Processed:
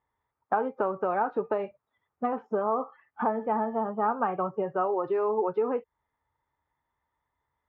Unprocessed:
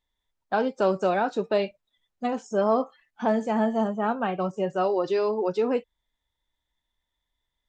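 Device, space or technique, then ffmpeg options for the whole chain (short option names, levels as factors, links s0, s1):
bass amplifier: -af "acompressor=threshold=0.0282:ratio=6,highpass=79,equalizer=f=84:t=q:w=4:g=7,equalizer=f=130:t=q:w=4:g=6,equalizer=f=190:t=q:w=4:g=-3,equalizer=f=440:t=q:w=4:g=5,equalizer=f=860:t=q:w=4:g=8,equalizer=f=1200:t=q:w=4:g=10,lowpass=f=2100:w=0.5412,lowpass=f=2100:w=1.3066,volume=1.33"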